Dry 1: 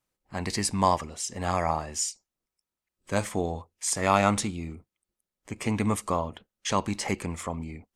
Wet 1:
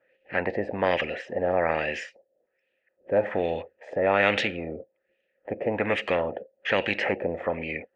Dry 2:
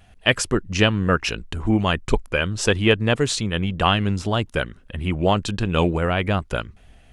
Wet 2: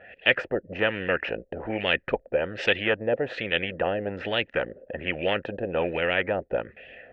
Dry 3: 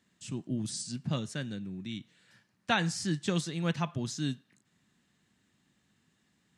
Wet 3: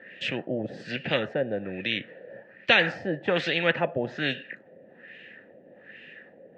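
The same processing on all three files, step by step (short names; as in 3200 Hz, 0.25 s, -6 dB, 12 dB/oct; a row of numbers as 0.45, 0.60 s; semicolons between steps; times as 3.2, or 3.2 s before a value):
vowel filter e; LFO low-pass sine 1.2 Hz 570–2800 Hz; spectral compressor 2:1; match loudness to -27 LUFS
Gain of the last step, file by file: +9.0, +3.5, +18.5 dB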